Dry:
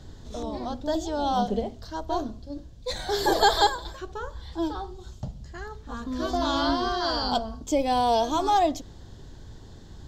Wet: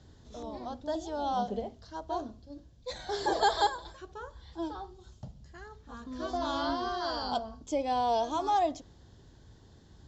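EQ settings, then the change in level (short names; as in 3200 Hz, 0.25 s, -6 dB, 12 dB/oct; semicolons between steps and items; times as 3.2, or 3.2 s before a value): HPF 45 Hz; Chebyshev low-pass 7500 Hz, order 6; dynamic EQ 760 Hz, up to +4 dB, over -36 dBFS, Q 0.74; -8.5 dB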